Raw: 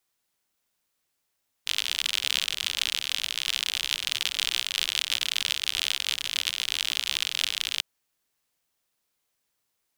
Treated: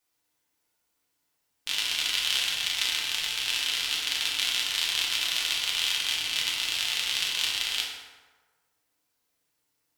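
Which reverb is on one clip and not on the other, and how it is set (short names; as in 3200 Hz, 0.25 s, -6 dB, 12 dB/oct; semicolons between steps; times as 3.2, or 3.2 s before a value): FDN reverb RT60 1.4 s, low-frequency decay 0.9×, high-frequency decay 0.55×, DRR -4 dB; gain -3.5 dB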